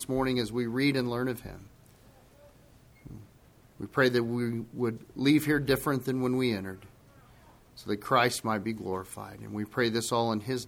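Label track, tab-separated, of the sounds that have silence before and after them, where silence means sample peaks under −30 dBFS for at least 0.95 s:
3.810000	6.720000	sound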